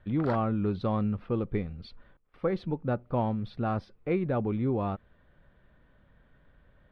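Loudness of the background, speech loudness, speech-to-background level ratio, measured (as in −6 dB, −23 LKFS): −41.5 LKFS, −31.0 LKFS, 10.5 dB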